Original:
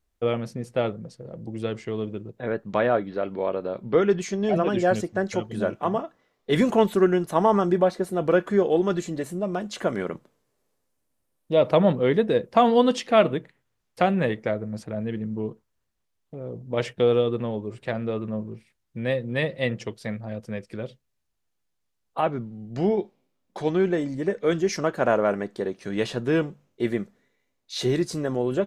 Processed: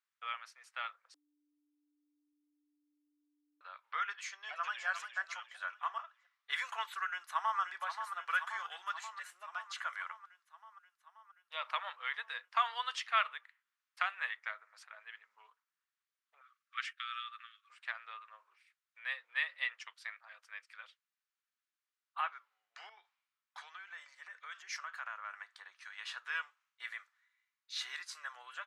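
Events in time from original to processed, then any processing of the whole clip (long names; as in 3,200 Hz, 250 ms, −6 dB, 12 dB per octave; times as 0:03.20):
0:01.14–0:03.61: beep over 295 Hz −12 dBFS
0:04.28–0:04.86: delay throw 350 ms, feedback 40%, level −8.5 dB
0:07.07–0:07.60: delay throw 530 ms, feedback 70%, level −8 dB
0:08.28–0:08.83: spectral tilt +2 dB per octave
0:16.41–0:17.70: linear-phase brick-wall high-pass 1,100 Hz
0:22.89–0:26.07: downward compressor 5 to 1, threshold −27 dBFS
whole clip: Butterworth high-pass 1,200 Hz 36 dB per octave; spectral tilt −4 dB per octave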